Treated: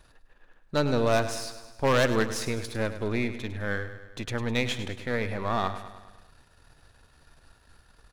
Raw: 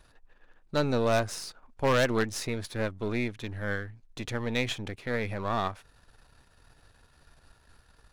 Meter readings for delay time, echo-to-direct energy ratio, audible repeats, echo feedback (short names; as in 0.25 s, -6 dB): 0.103 s, -10.0 dB, 5, 58%